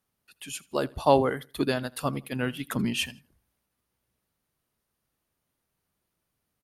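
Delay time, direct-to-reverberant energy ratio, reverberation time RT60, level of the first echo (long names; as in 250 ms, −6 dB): 81 ms, no reverb audible, no reverb audible, −23.5 dB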